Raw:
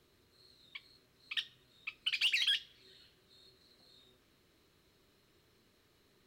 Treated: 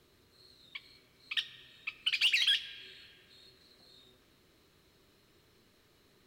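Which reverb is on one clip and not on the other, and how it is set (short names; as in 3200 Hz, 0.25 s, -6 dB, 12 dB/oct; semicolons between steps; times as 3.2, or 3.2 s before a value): digital reverb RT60 3.1 s, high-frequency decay 0.5×, pre-delay 40 ms, DRR 15 dB; gain +3.5 dB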